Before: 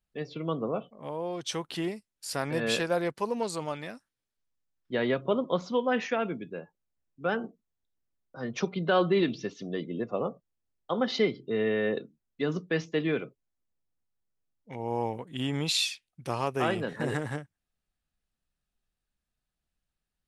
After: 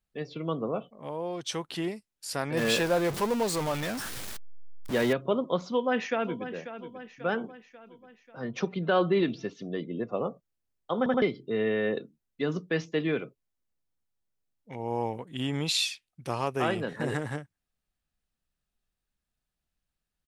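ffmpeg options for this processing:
-filter_complex "[0:a]asettb=1/sr,asplit=3[a][b][c];[a]atrim=end=2.574[d];[b]atrim=start=2.57:end=5.13,asetpts=PTS-STARTPTS,afade=t=in:d=0.004:c=qsin,afade=t=out:st=2.556:d=0.004:c=qsin,aeval=exprs='val(0)+0.5*0.0335*sgn(val(0))':c=same[e];[c]atrim=start=5.126[f];[d][e]acrossfade=d=0.004:c1=hsin:c2=qsin[g];[g][f]acrossfade=d=0.004:c1=qsin:c2=hsin,asplit=2[h][i];[i]afade=t=in:st=5.7:d=0.01,afade=t=out:st=6.52:d=0.01,aecho=0:1:540|1080|1620|2160|2700|3240:0.251189|0.138154|0.0759846|0.0417915|0.0229853|0.0126419[j];[h][j]amix=inputs=2:normalize=0,asettb=1/sr,asplit=3[k][l][m];[k]atrim=end=8.384[n];[l]atrim=start=8.38:end=10.12,asetpts=PTS-STARTPTS,afade=t=in:d=0.004:c=qsin,afade=t=out:st=1.736:d=0.004:c=qsin,highshelf=f=4.8k:g=-7[o];[m]atrim=start=10.116[p];[n][o]acrossfade=d=0.004:c1=hsin:c2=qsin[q];[q][p]acrossfade=d=0.004:c1=qsin:c2=hsin,asplit=4[r][s][t][u];[r]atrim=end=11.062[v];[s]atrim=start=10.978:end=11.062[w];[t]atrim=start=10.978:end=11.062[x];[u]atrim=start=11.218[y];[v][w]acrossfade=d=0.004:c1=hsin:c2=hsin[z];[z][x]acrossfade=d=0.004:c1=hsin:c2=hsin[aa];[aa][y]acrossfade=d=0.004:c1=hsin:c2=hsin"

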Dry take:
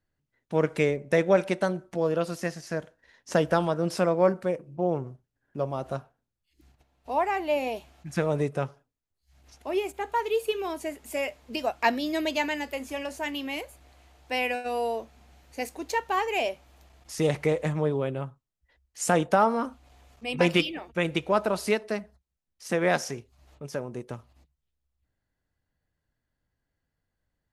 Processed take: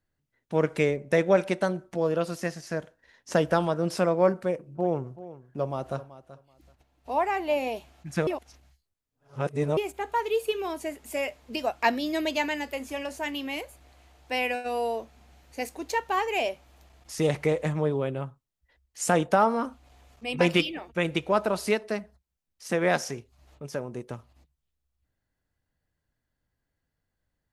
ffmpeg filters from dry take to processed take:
-filter_complex "[0:a]asettb=1/sr,asplit=3[a][b][c];[a]atrim=end=4.374[d];[b]atrim=start=4.37:end=7.54,asetpts=PTS-STARTPTS,afade=t=in:d=0.004:c=qsin,afade=t=out:st=3.166:d=0.004:c=qsin,aecho=1:1:381|762:0.158|0.0285,atrim=end_sample=139797[e];[c]atrim=start=7.536[f];[d][e]acrossfade=d=0.004:c1=hsin:c2=qsin[g];[g][f]acrossfade=d=0.004:c1=qsin:c2=hsin,asplit=3[h][i][j];[h]atrim=end=8.272[k];[i]atrim=start=8.268:end=9.772,asetpts=PTS-STARTPTS,areverse[l];[j]atrim=start=9.768[m];[k][l]acrossfade=d=0.004:c1=hsin:c2=hsin[n];[n][m]acrossfade=d=0.004:c1=hsin:c2=hsin"

